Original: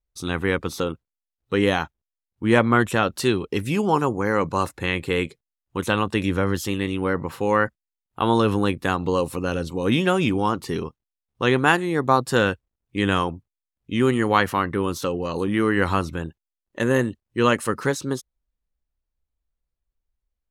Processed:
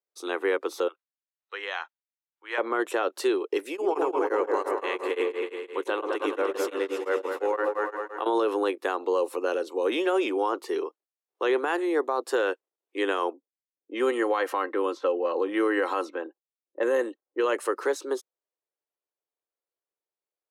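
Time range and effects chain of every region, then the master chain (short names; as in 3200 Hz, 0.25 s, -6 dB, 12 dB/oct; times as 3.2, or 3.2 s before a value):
0.88–2.58 HPF 1400 Hz + air absorption 120 m
3.69–8.26 repeats that get brighter 0.107 s, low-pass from 750 Hz, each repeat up 2 oct, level -3 dB + beating tremolo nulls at 5.8 Hz
13.33–17.46 low-pass opened by the level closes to 340 Hz, open at -17.5 dBFS + comb 3.8 ms, depth 41%
whole clip: steep high-pass 340 Hz 48 dB/oct; tilt shelf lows +5 dB, about 1300 Hz; limiter -13.5 dBFS; gain -2.5 dB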